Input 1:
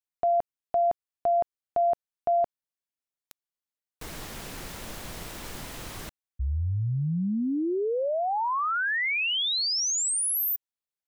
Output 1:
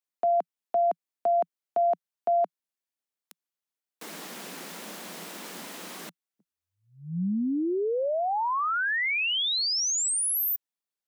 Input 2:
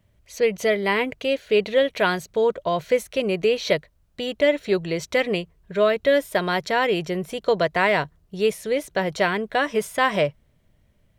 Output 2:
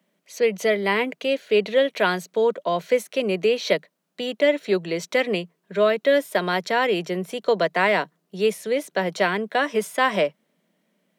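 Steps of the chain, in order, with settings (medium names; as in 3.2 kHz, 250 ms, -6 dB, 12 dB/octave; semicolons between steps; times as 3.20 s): steep high-pass 170 Hz 72 dB/octave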